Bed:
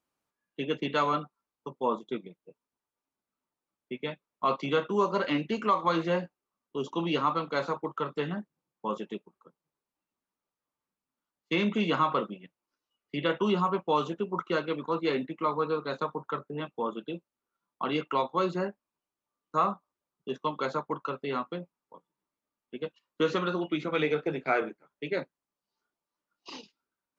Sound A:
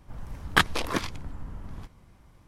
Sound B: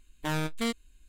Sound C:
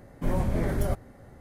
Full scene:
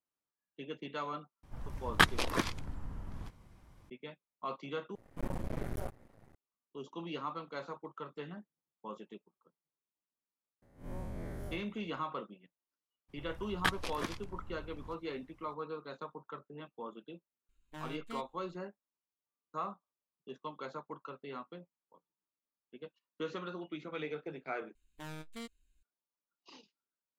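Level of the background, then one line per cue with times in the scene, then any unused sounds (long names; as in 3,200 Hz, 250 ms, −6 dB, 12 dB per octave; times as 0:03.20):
bed −12.5 dB
0:01.43: mix in A −4 dB
0:04.95: overwrite with C −8 dB + half-wave rectification
0:10.62: mix in C −14 dB + spectrum smeared in time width 110 ms
0:13.08: mix in A −10.5 dB, fades 0.02 s
0:17.49: mix in B −15.5 dB + high-shelf EQ 4,300 Hz −6 dB
0:24.75: overwrite with B −15.5 dB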